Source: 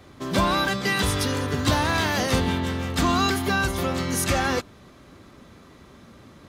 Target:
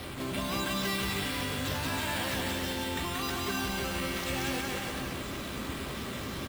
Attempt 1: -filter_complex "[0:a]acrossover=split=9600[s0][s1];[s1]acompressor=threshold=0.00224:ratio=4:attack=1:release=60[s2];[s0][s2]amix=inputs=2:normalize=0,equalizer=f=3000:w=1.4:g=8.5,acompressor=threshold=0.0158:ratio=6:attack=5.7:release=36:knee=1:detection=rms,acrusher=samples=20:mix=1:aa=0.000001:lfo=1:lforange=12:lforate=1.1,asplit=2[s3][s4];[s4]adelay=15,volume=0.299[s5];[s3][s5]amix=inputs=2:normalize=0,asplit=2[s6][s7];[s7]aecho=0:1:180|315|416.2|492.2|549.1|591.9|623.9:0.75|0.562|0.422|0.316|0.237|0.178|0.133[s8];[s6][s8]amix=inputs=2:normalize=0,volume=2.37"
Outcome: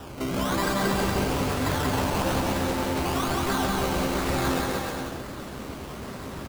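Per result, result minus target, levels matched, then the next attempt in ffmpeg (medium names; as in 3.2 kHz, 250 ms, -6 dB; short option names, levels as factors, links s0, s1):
compression: peak gain reduction -7 dB; decimation with a swept rate: distortion +7 dB
-filter_complex "[0:a]acrossover=split=9600[s0][s1];[s1]acompressor=threshold=0.00224:ratio=4:attack=1:release=60[s2];[s0][s2]amix=inputs=2:normalize=0,equalizer=f=3000:w=1.4:g=8.5,acompressor=threshold=0.00596:ratio=6:attack=5.7:release=36:knee=1:detection=rms,acrusher=samples=20:mix=1:aa=0.000001:lfo=1:lforange=12:lforate=1.1,asplit=2[s3][s4];[s4]adelay=15,volume=0.299[s5];[s3][s5]amix=inputs=2:normalize=0,asplit=2[s6][s7];[s7]aecho=0:1:180|315|416.2|492.2|549.1|591.9|623.9:0.75|0.562|0.422|0.316|0.237|0.178|0.133[s8];[s6][s8]amix=inputs=2:normalize=0,volume=2.37"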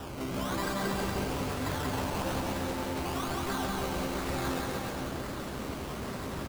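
decimation with a swept rate: distortion +7 dB
-filter_complex "[0:a]acrossover=split=9600[s0][s1];[s1]acompressor=threshold=0.00224:ratio=4:attack=1:release=60[s2];[s0][s2]amix=inputs=2:normalize=0,equalizer=f=3000:w=1.4:g=8.5,acompressor=threshold=0.00596:ratio=6:attack=5.7:release=36:knee=1:detection=rms,acrusher=samples=6:mix=1:aa=0.000001:lfo=1:lforange=3.6:lforate=1.1,asplit=2[s3][s4];[s4]adelay=15,volume=0.299[s5];[s3][s5]amix=inputs=2:normalize=0,asplit=2[s6][s7];[s7]aecho=0:1:180|315|416.2|492.2|549.1|591.9|623.9:0.75|0.562|0.422|0.316|0.237|0.178|0.133[s8];[s6][s8]amix=inputs=2:normalize=0,volume=2.37"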